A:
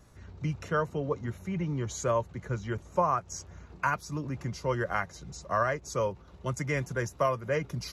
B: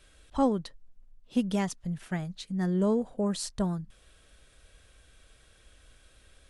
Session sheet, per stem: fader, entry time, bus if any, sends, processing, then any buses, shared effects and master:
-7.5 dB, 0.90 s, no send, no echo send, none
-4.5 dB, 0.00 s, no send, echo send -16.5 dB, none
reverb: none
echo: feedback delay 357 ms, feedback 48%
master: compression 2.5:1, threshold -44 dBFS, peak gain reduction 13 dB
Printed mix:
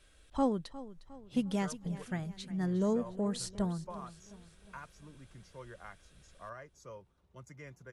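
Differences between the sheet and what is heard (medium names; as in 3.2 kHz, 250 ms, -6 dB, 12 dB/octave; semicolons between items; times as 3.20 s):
stem A -7.5 dB -> -19.5 dB; master: missing compression 2.5:1, threshold -44 dBFS, peak gain reduction 13 dB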